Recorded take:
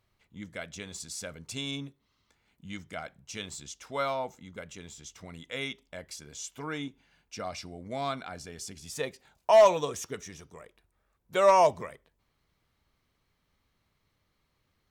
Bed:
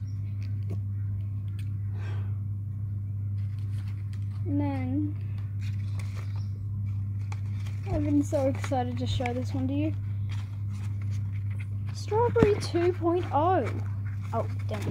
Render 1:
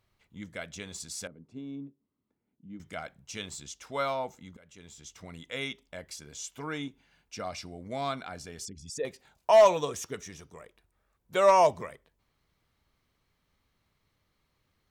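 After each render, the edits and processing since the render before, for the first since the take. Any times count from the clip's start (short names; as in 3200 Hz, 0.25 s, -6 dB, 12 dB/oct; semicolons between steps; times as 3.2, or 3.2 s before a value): 1.27–2.8 band-pass 260 Hz, Q 1.6; 4.57–5.36 fade in equal-power, from -21 dB; 8.65–9.05 formant sharpening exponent 2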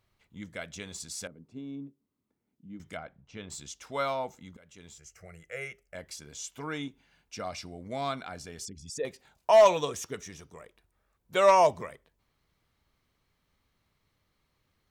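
2.97–3.5 tape spacing loss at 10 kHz 32 dB; 4.98–5.95 fixed phaser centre 970 Hz, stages 6; 9.65–11.55 dynamic EQ 3000 Hz, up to +4 dB, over -39 dBFS, Q 0.85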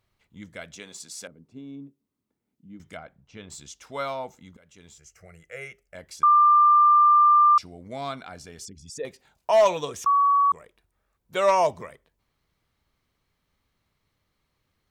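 0.75–1.28 HPF 220 Hz; 6.23–7.58 bleep 1190 Hz -13 dBFS; 10.06–10.52 bleep 1130 Hz -16 dBFS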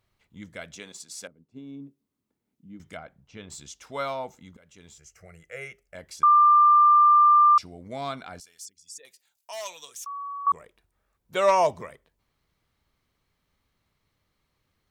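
0.92–1.8 upward expander, over -59 dBFS; 8.4–10.47 pre-emphasis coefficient 0.97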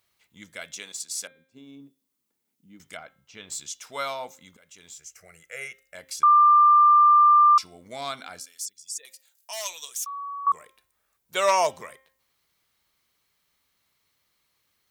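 tilt +3 dB/oct; de-hum 265.3 Hz, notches 15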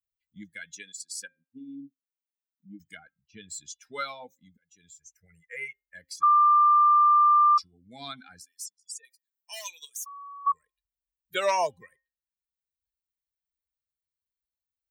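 per-bin expansion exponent 2; three-band squash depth 40%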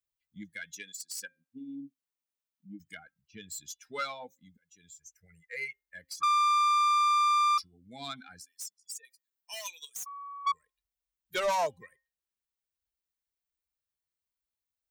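self-modulated delay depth 0.11 ms; soft clip -22.5 dBFS, distortion -12 dB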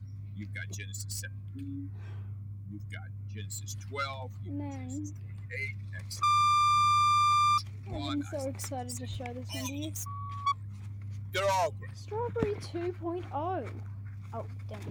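add bed -9.5 dB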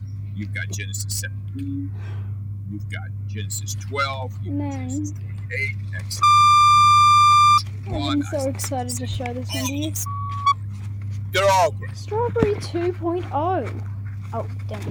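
gain +11.5 dB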